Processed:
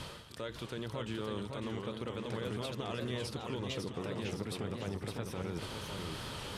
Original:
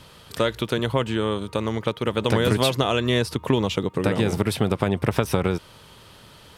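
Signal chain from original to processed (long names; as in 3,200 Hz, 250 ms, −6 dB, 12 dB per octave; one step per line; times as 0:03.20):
low-pass filter 11,000 Hz 12 dB per octave
reversed playback
downward compressor 6 to 1, threshold −38 dBFS, peak gain reduction 22 dB
reversed playback
brickwall limiter −33 dBFS, peak gain reduction 9 dB
on a send: backwards echo 301 ms −15.5 dB
on the sum: feedback echo with a swinging delay time 554 ms, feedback 50%, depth 178 cents, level −4.5 dB
level +4 dB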